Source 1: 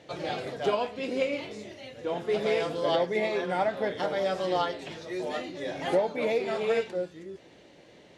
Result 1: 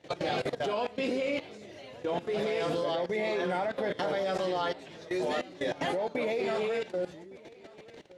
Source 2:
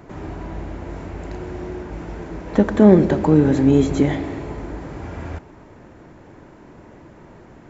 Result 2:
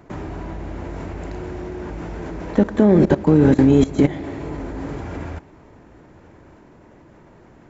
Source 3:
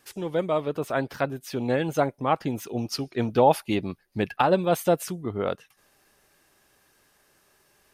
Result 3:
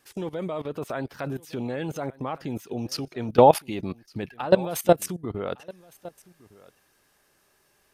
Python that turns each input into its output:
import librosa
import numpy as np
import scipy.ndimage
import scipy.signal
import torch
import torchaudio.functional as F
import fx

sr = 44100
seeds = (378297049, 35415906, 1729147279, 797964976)

y = fx.level_steps(x, sr, step_db=18)
y = y + 10.0 ** (-22.5 / 20.0) * np.pad(y, (int(1160 * sr / 1000.0), 0))[:len(y)]
y = y * 10.0 ** (6.0 / 20.0)